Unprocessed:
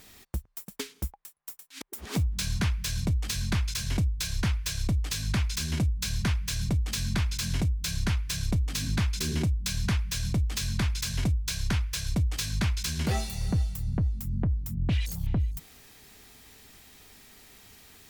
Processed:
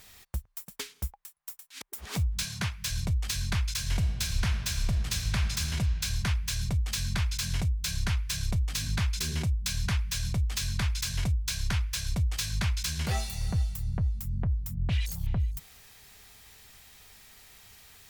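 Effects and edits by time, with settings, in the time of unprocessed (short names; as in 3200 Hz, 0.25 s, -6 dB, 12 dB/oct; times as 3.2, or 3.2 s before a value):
2.43–2.89 HPF 150 Hz -> 60 Hz 24 dB/oct
3.79–5.74 reverb throw, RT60 2.4 s, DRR 6 dB
whole clip: bell 290 Hz -11.5 dB 1.2 oct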